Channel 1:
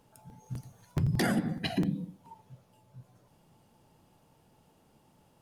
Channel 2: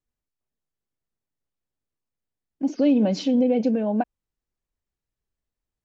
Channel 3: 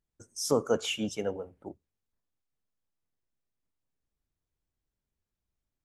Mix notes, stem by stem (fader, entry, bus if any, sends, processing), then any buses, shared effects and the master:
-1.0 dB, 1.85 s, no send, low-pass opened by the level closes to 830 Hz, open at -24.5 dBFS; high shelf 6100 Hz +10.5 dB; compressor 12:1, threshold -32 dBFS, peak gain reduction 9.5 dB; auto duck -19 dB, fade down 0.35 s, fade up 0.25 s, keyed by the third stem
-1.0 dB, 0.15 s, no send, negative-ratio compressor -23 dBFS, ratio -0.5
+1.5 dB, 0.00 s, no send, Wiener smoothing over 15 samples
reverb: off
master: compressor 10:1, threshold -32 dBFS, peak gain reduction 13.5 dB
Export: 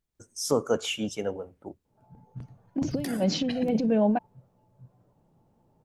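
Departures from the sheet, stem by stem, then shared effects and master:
stem 3: missing Wiener smoothing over 15 samples; master: missing compressor 10:1, threshold -32 dBFS, peak gain reduction 13.5 dB

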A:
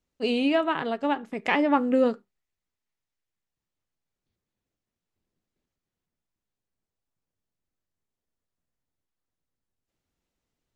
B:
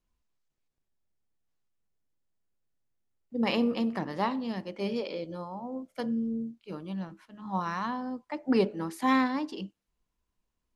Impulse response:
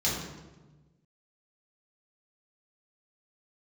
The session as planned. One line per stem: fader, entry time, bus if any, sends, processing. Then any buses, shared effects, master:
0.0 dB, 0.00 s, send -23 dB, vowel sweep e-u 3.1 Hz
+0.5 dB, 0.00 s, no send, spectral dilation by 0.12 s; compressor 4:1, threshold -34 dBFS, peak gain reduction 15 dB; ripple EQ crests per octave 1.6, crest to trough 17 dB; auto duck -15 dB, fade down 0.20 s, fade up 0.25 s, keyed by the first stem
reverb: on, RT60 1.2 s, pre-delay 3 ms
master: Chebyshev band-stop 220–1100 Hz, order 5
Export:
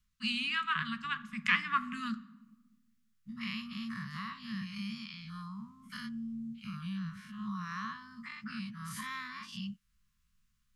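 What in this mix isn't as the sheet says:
stem A: missing vowel sweep e-u 3.1 Hz; stem B: missing ripple EQ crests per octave 1.6, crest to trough 17 dB

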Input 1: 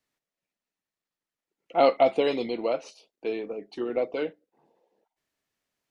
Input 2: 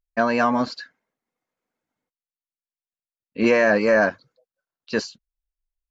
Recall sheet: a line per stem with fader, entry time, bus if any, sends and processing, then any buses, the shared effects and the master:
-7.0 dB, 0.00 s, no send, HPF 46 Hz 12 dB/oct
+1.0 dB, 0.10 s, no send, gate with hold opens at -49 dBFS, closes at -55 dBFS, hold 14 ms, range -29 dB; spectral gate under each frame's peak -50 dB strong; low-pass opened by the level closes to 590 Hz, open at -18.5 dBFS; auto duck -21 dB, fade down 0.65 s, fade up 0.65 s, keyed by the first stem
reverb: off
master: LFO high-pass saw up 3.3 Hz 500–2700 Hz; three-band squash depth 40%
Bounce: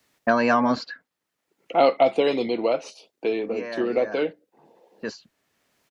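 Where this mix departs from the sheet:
stem 1 -7.0 dB -> +4.0 dB; master: missing LFO high-pass saw up 3.3 Hz 500–2700 Hz

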